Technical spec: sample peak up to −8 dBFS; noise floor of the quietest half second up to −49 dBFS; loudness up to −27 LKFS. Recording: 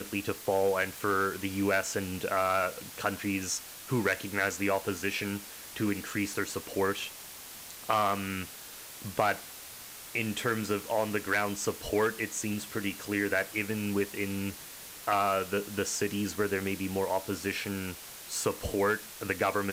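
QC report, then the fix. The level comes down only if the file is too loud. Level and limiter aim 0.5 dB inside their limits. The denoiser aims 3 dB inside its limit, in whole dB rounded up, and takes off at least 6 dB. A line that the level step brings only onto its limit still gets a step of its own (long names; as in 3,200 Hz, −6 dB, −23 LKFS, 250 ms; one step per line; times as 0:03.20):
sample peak −11.0 dBFS: in spec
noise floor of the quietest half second −46 dBFS: out of spec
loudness −31.5 LKFS: in spec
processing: broadband denoise 6 dB, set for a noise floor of −46 dBFS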